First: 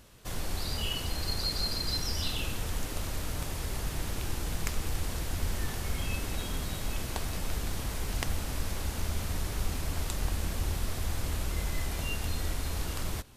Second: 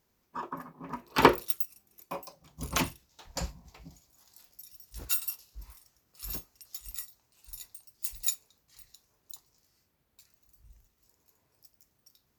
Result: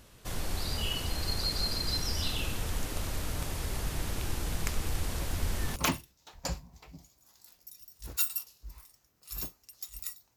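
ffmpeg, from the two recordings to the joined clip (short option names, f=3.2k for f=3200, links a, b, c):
-filter_complex "[1:a]asplit=2[a][b];[0:a]apad=whole_dur=10.36,atrim=end=10.36,atrim=end=5.762[c];[b]atrim=start=2.678:end=7.28[d];[a]atrim=start=2.12:end=2.68,asetpts=PTS-STARTPTS,volume=-10.5dB,afade=t=in:d=0.004:c=hsin,afade=t=out:st=0.556:d=0.004:c=hsin,adelay=5200[e];[c][d]acrossfade=d=0.004:c1=hsin:c2=hsin[f];[f][e]amix=inputs=2:normalize=0"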